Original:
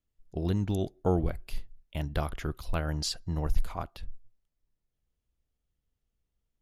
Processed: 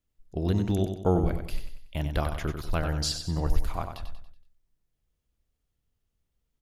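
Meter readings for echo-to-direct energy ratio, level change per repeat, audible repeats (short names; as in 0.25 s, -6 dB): -6.5 dB, -7.5 dB, 4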